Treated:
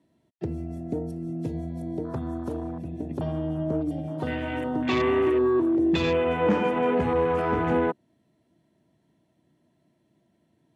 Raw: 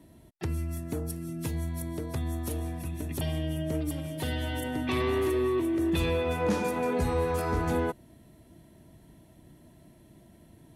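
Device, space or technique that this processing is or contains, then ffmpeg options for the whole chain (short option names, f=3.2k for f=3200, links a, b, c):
over-cleaned archive recording: -filter_complex "[0:a]asettb=1/sr,asplit=3[a][b][c];[a]atrim=end=2.604[d];[b]atrim=start=2.6:end=3.85,asetpts=PTS-STARTPTS,afade=t=in:d=0.004:c=qsin,afade=t=out:st=1.246:d=0.004:c=qsin,highshelf=f=4.9k:g=-4.5[e];[c]atrim=start=3.846[f];[d][e]acrossfade=d=0.004:c1=hsin:c2=qsin[g];[g][f]acrossfade=d=0.004:c1=qsin:c2=hsin,highpass=140,lowpass=6.6k,afwtdn=0.0112,volume=5.5dB"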